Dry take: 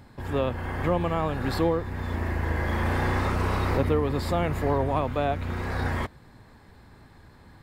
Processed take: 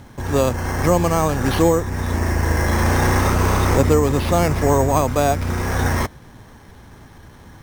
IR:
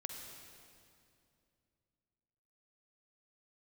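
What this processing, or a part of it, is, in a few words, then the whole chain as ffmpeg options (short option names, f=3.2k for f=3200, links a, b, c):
crushed at another speed: -af "asetrate=22050,aresample=44100,acrusher=samples=12:mix=1:aa=0.000001,asetrate=88200,aresample=44100,volume=8.5dB"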